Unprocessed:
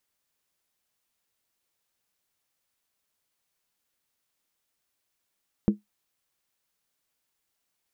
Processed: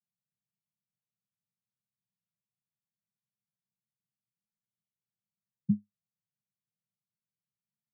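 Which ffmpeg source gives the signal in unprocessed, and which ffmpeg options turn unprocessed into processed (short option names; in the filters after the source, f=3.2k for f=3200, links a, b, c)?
-f lavfi -i "aevalsrc='0.224*pow(10,-3*t/0.15)*sin(2*PI*207*t)+0.0891*pow(10,-3*t/0.119)*sin(2*PI*330*t)+0.0355*pow(10,-3*t/0.103)*sin(2*PI*442.2*t)+0.0141*pow(10,-3*t/0.099)*sin(2*PI*475.3*t)+0.00562*pow(10,-3*t/0.092)*sin(2*PI*549.2*t)':d=0.63:s=44100"
-af "asuperpass=centerf=150:order=20:qfactor=1.3"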